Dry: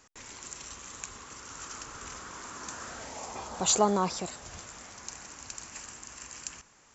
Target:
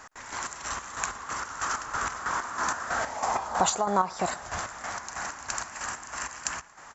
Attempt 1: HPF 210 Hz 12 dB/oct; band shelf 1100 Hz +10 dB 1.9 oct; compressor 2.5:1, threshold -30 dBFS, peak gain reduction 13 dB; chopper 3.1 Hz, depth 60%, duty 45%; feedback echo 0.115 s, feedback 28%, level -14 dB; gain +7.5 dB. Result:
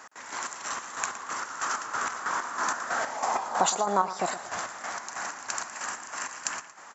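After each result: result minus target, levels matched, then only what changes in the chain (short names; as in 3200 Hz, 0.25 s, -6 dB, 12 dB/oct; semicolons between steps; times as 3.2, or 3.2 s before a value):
echo-to-direct +10.5 dB; 250 Hz band -2.5 dB
change: feedback echo 0.115 s, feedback 28%, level -24.5 dB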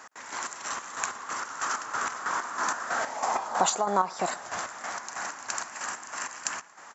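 250 Hz band -2.5 dB
remove: HPF 210 Hz 12 dB/oct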